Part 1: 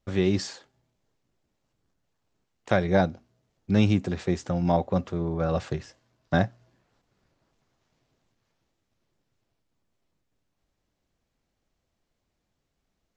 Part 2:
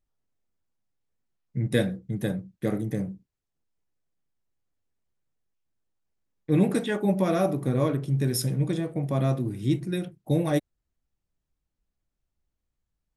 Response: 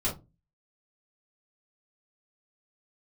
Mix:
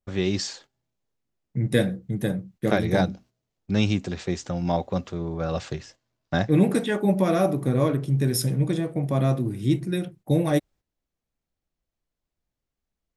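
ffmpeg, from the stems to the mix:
-filter_complex "[0:a]adynamicequalizer=threshold=0.00794:dfrequency=2300:dqfactor=0.7:tfrequency=2300:tqfactor=0.7:attack=5:release=100:ratio=0.375:range=3.5:mode=boostabove:tftype=highshelf,volume=-1.5dB[a];[1:a]volume=2.5dB[b];[a][b]amix=inputs=2:normalize=0,agate=range=-9dB:threshold=-49dB:ratio=16:detection=peak"

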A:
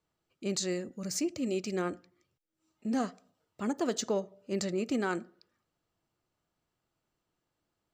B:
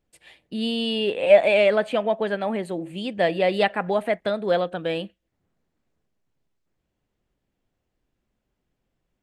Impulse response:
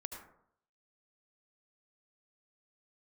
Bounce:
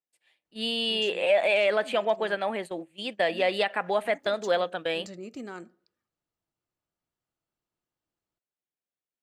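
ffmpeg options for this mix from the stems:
-filter_complex "[0:a]adelay=450,volume=-8.5dB[a];[1:a]highpass=f=760:p=1,agate=range=-18dB:threshold=-37dB:ratio=16:detection=peak,volume=1.5dB,asplit=2[b][c];[c]apad=whole_len=369658[d];[a][d]sidechaincompress=threshold=-30dB:ratio=8:attack=6.1:release=191[e];[e][b]amix=inputs=2:normalize=0,alimiter=limit=-13.5dB:level=0:latency=1:release=62"

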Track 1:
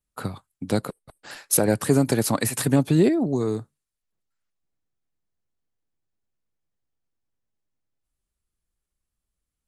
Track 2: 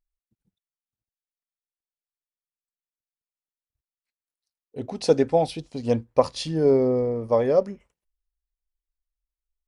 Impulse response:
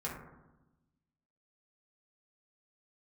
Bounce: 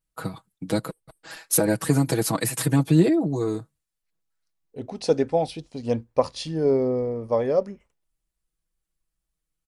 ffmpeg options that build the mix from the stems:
-filter_complex "[0:a]aecho=1:1:6.2:0.85,volume=-3dB[a];[1:a]volume=-2dB[b];[a][b]amix=inputs=2:normalize=0"

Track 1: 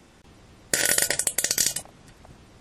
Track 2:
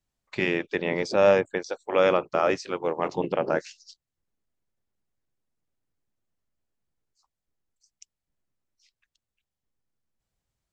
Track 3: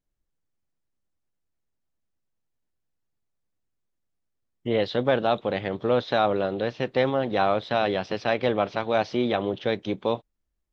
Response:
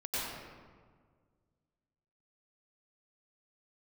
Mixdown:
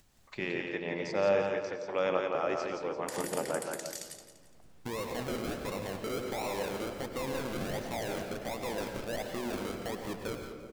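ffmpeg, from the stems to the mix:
-filter_complex "[0:a]adelay=2350,volume=-16dB,asplit=3[a][b][c];[b]volume=-20dB[d];[c]volume=-14dB[e];[1:a]acompressor=mode=upward:threshold=-35dB:ratio=2.5,volume=-11dB,asplit=3[f][g][h];[g]volume=-11dB[i];[h]volume=-3dB[j];[2:a]acrusher=samples=39:mix=1:aa=0.000001:lfo=1:lforange=23.4:lforate=1.4,asoftclip=type=hard:threshold=-23.5dB,adelay=200,volume=-2.5dB,asplit=3[k][l][m];[l]volume=-16dB[n];[m]volume=-18.5dB[o];[a][k]amix=inputs=2:normalize=0,acompressor=threshold=-40dB:ratio=3,volume=0dB[p];[3:a]atrim=start_sample=2205[q];[d][i][n]amix=inputs=3:normalize=0[r];[r][q]afir=irnorm=-1:irlink=0[s];[e][j][o]amix=inputs=3:normalize=0,aecho=0:1:171|342|513|684|855:1|0.34|0.116|0.0393|0.0134[t];[f][p][s][t]amix=inputs=4:normalize=0"

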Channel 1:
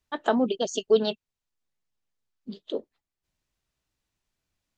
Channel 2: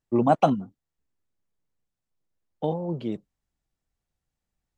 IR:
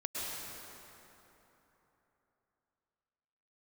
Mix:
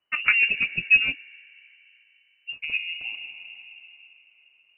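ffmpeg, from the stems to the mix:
-filter_complex "[0:a]volume=3dB[a];[1:a]acompressor=threshold=-27dB:ratio=4,volume=-5dB,asplit=2[b][c];[c]volume=-4dB[d];[2:a]atrim=start_sample=2205[e];[d][e]afir=irnorm=-1:irlink=0[f];[a][b][f]amix=inputs=3:normalize=0,aemphasis=mode=production:type=75fm,lowpass=f=2.6k:t=q:w=0.5098,lowpass=f=2.6k:t=q:w=0.6013,lowpass=f=2.6k:t=q:w=0.9,lowpass=f=2.6k:t=q:w=2.563,afreqshift=-3000"

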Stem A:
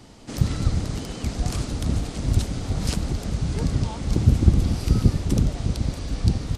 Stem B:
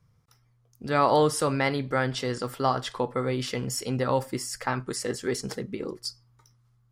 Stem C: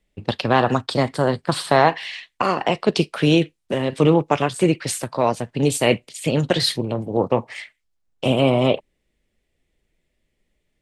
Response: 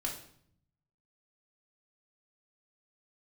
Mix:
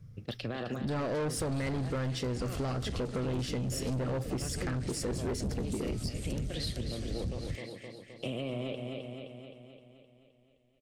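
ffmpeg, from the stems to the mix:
-filter_complex "[0:a]adelay=1000,volume=-6.5dB[a];[1:a]lowshelf=f=480:g=12,volume=2.5dB[b];[2:a]alimiter=limit=-10.5dB:level=0:latency=1:release=17,volume=-10.5dB,asplit=2[c][d];[d]volume=-8dB,aecho=0:1:260|520|780|1040|1300|1560|1820|2080|2340:1|0.58|0.336|0.195|0.113|0.0656|0.0381|0.0221|0.0128[e];[a][b][c][e]amix=inputs=4:normalize=0,equalizer=f=940:w=2.8:g=-14,asoftclip=type=tanh:threshold=-19.5dB,acompressor=threshold=-32dB:ratio=6"

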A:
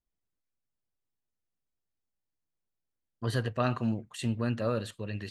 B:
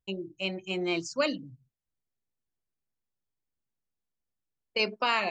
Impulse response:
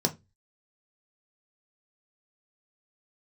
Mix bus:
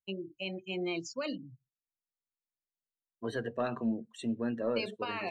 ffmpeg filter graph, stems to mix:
-filter_complex "[0:a]highpass=220,aeval=exprs='(tanh(10*val(0)+0.25)-tanh(0.25))/10':c=same,volume=-4.5dB,asplit=2[a][b];[b]volume=-14dB[c];[1:a]alimiter=limit=-23dB:level=0:latency=1:release=87,volume=-3dB[d];[2:a]atrim=start_sample=2205[e];[c][e]afir=irnorm=-1:irlink=0[f];[a][d][f]amix=inputs=3:normalize=0,afftdn=nr=16:nf=-44"

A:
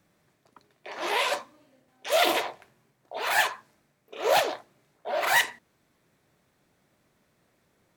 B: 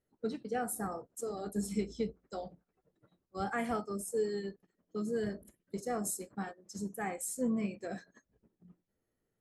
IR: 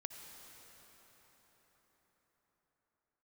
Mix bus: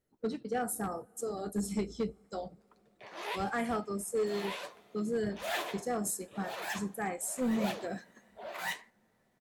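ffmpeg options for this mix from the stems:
-filter_complex "[0:a]flanger=delay=5.6:depth=9.9:regen=41:speed=1.4:shape=sinusoidal,adelay=2150,volume=-8dB,asplit=3[a][b][c];[b]volume=-16dB[d];[c]volume=-3dB[e];[1:a]asoftclip=type=hard:threshold=-28dB,volume=1.5dB,asplit=3[f][g][h];[g]volume=-21.5dB[i];[h]apad=whole_len=445929[j];[a][j]sidechaincompress=threshold=-52dB:ratio=8:attack=29:release=218[k];[2:a]atrim=start_sample=2205[l];[d][i]amix=inputs=2:normalize=0[m];[m][l]afir=irnorm=-1:irlink=0[n];[e]aecho=0:1:1165:1[o];[k][f][n][o]amix=inputs=4:normalize=0"

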